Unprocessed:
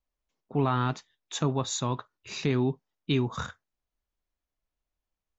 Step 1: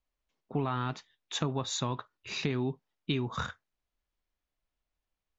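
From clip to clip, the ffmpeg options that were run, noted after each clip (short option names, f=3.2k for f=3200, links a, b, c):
-af "lowpass=3.2k,aemphasis=mode=production:type=75kf,acompressor=threshold=-27dB:ratio=6"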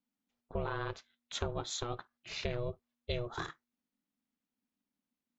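-af "aeval=exprs='val(0)*sin(2*PI*240*n/s)':c=same,volume=-2dB"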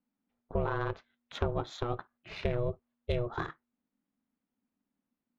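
-af "adynamicsmooth=sensitivity=1:basefreq=2.1k,volume=5.5dB"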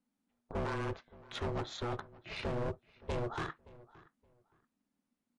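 -filter_complex "[0:a]volume=33dB,asoftclip=hard,volume=-33dB,asplit=2[a][b];[b]adelay=571,lowpass=f=2.6k:p=1,volume=-20.5dB,asplit=2[c][d];[d]adelay=571,lowpass=f=2.6k:p=1,volume=0.22[e];[a][c][e]amix=inputs=3:normalize=0,volume=1.5dB" -ar 24000 -c:a libmp3lame -b:a 48k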